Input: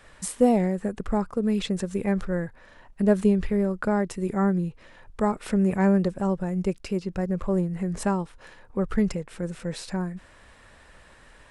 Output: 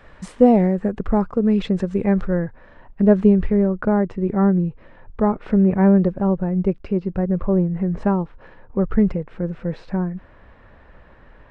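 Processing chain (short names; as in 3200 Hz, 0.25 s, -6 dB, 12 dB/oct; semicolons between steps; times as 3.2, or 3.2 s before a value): tape spacing loss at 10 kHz 27 dB, from 2.34 s at 10 kHz 36 dB, from 3.66 s at 10 kHz 45 dB; gain +7.5 dB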